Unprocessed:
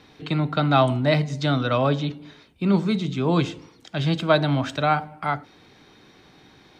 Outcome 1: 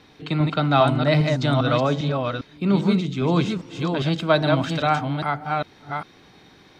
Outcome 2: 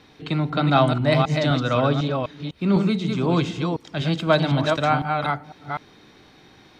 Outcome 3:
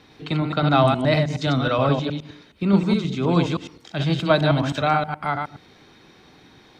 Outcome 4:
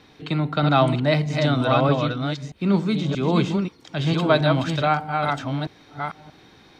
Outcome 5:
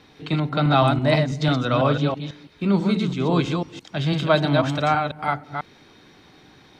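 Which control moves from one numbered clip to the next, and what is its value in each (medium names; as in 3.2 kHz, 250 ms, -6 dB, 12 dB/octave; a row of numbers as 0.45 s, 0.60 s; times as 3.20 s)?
chunks repeated in reverse, time: 402 ms, 251 ms, 105 ms, 630 ms, 165 ms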